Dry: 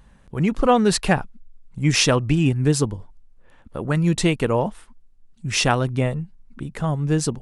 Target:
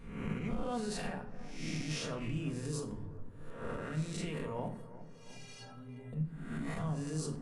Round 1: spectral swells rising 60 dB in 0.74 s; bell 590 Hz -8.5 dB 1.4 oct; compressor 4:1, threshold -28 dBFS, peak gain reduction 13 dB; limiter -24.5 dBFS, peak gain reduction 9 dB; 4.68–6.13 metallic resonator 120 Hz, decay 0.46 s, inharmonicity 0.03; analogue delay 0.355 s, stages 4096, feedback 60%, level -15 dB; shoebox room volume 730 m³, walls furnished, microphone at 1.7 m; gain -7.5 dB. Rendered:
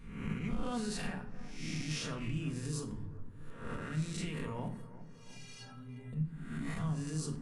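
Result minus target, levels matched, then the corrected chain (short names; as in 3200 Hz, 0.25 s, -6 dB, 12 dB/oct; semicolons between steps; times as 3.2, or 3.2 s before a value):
500 Hz band -4.0 dB
spectral swells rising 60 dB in 0.74 s; compressor 4:1, threshold -28 dBFS, peak gain reduction 15 dB; limiter -24.5 dBFS, peak gain reduction 9 dB; 4.68–6.13 metallic resonator 120 Hz, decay 0.46 s, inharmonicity 0.03; analogue delay 0.355 s, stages 4096, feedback 60%, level -15 dB; shoebox room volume 730 m³, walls furnished, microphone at 1.7 m; gain -7.5 dB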